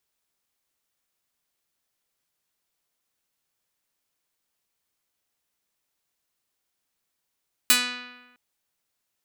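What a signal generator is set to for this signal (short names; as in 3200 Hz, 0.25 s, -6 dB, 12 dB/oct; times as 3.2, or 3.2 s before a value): plucked string B3, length 0.66 s, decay 1.19 s, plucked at 0.46, medium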